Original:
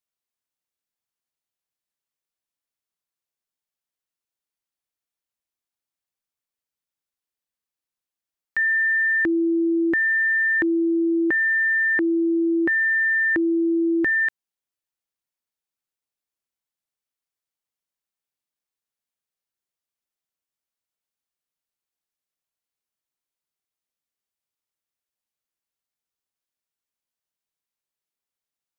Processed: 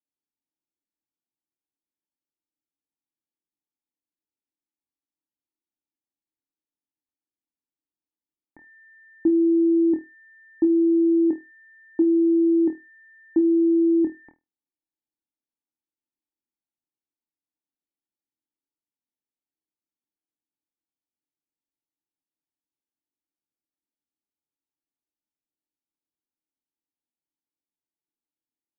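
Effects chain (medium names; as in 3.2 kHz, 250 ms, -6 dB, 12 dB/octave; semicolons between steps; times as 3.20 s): cascade formant filter u; flutter echo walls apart 4.3 m, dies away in 0.21 s; trim +8 dB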